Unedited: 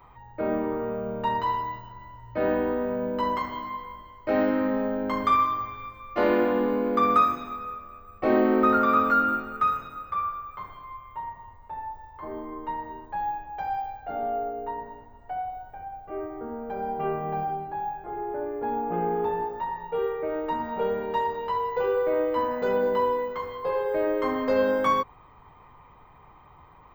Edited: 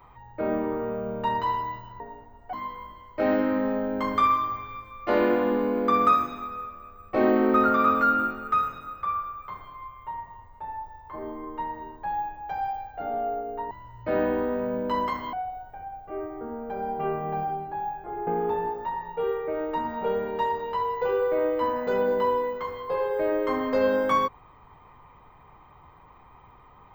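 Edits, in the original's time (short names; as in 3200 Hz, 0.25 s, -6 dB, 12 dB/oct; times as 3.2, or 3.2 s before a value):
2–3.62 swap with 14.8–15.33
18.27–19.02 cut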